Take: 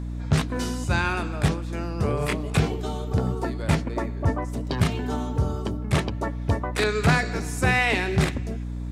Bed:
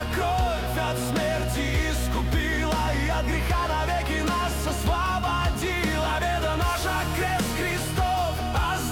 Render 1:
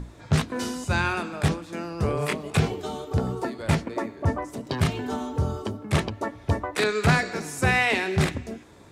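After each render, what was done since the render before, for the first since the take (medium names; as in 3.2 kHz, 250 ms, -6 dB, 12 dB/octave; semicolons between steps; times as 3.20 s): hum notches 60/120/180/240/300 Hz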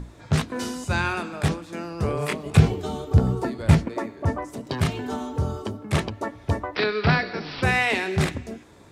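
2.46–3.89 s: bass shelf 190 Hz +11 dB; 6.75–7.63 s: careless resampling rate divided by 4×, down none, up filtered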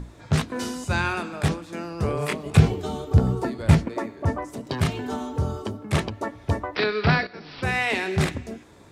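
7.27–8.07 s: fade in, from -12.5 dB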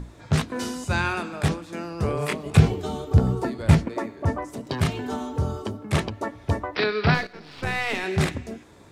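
7.14–8.04 s: partial rectifier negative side -7 dB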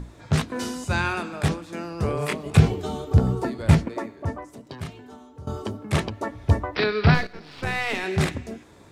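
3.81–5.47 s: fade out quadratic, to -16.5 dB; 6.30–7.39 s: bass shelf 110 Hz +10.5 dB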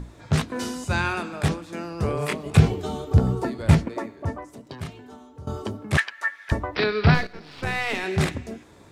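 5.97–6.52 s: resonant high-pass 1.7 kHz, resonance Q 6.4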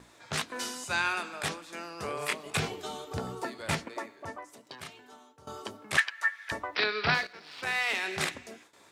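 gate with hold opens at -39 dBFS; high-pass 1.3 kHz 6 dB/octave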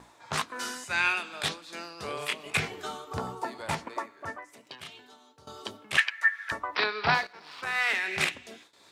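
tremolo 2.8 Hz, depth 35%; sweeping bell 0.28 Hz 880–4200 Hz +9 dB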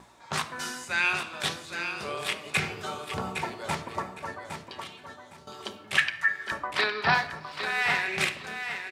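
on a send: feedback delay 811 ms, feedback 23%, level -8 dB; on the sum: simulated room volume 2500 m³, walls furnished, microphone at 1.1 m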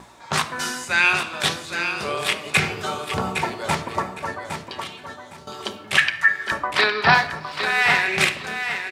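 trim +8 dB; peak limiter -3 dBFS, peak gain reduction 2.5 dB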